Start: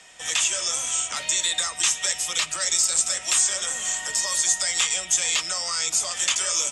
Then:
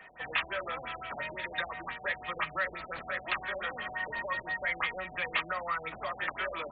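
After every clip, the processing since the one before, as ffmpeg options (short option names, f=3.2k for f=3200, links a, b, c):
-af "highshelf=f=2.9k:t=q:w=1.5:g=-13,afftfilt=real='re*lt(b*sr/1024,780*pow(4700/780,0.5+0.5*sin(2*PI*5.8*pts/sr)))':imag='im*lt(b*sr/1024,780*pow(4700/780,0.5+0.5*sin(2*PI*5.8*pts/sr)))':win_size=1024:overlap=0.75"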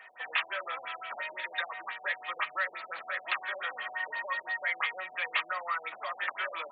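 -af "highpass=690,volume=1dB"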